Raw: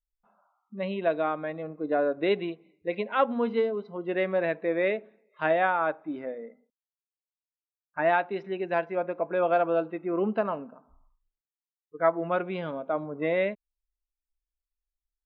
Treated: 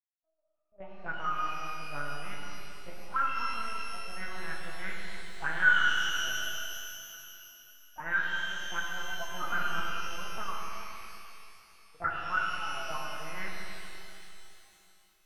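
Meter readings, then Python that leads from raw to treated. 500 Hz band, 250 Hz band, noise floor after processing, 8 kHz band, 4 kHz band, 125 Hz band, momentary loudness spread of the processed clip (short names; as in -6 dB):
-21.5 dB, -17.5 dB, -67 dBFS, n/a, +9.0 dB, -7.0 dB, 18 LU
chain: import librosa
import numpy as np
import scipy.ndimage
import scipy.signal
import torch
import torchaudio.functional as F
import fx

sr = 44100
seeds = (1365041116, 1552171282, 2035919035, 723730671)

p1 = fx.law_mismatch(x, sr, coded='A')
p2 = fx.peak_eq(p1, sr, hz=2000.0, db=15.0, octaves=2.0)
p3 = fx.auto_wah(p2, sr, base_hz=620.0, top_hz=1500.0, q=15.0, full_db=-15.0, direction='up')
p4 = fx.rider(p3, sr, range_db=4, speed_s=2.0)
p5 = p3 + F.gain(torch.from_numpy(p4), -2.5).numpy()
p6 = fx.graphic_eq(p5, sr, hz=(125, 250, 1000, 2000), db=(10, -6, -9, -7))
p7 = p6 + fx.echo_single(p6, sr, ms=193, db=-24.0, dry=0)
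p8 = fx.lpc_vocoder(p7, sr, seeds[0], excitation='pitch_kept', order=8)
y = fx.rev_shimmer(p8, sr, seeds[1], rt60_s=2.9, semitones=12, shimmer_db=-8, drr_db=-2.0)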